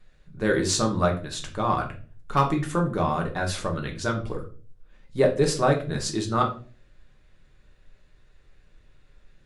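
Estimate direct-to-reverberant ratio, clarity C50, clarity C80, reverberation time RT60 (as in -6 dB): 1.0 dB, 11.5 dB, 16.0 dB, 0.40 s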